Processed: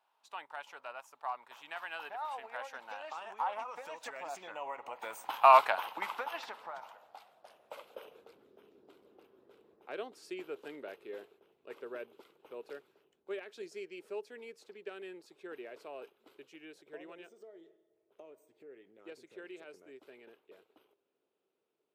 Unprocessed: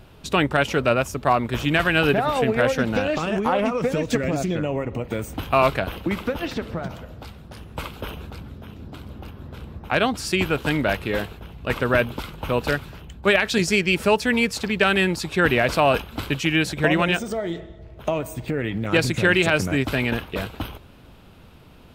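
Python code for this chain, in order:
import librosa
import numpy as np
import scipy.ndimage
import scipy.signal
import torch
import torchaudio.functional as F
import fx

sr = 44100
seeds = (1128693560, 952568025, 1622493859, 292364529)

y = fx.doppler_pass(x, sr, speed_mps=6, closest_m=3.3, pass_at_s=5.64)
y = fx.filter_sweep_highpass(y, sr, from_hz=890.0, to_hz=400.0, start_s=6.88, end_s=8.48, q=4.2)
y = y * librosa.db_to_amplitude(-7.5)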